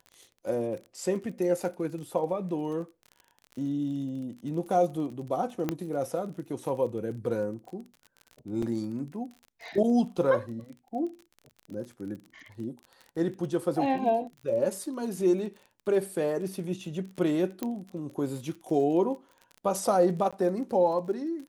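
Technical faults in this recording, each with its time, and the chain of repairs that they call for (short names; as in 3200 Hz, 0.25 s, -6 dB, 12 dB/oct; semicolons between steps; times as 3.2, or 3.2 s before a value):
crackle 31/s -38 dBFS
5.69 pop -15 dBFS
8.62 gap 4.7 ms
17.63 pop -17 dBFS
20.31–20.33 gap 16 ms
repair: de-click; interpolate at 8.62, 4.7 ms; interpolate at 20.31, 16 ms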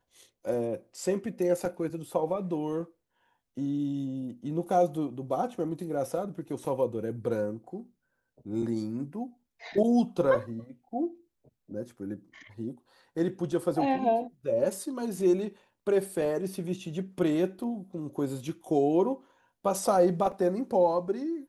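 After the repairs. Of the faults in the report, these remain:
17.63 pop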